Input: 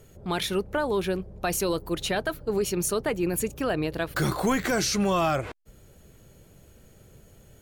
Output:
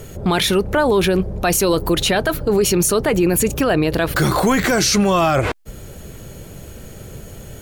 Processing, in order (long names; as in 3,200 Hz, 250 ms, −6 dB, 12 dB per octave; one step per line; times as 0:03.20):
boost into a limiter +25 dB
level −7.5 dB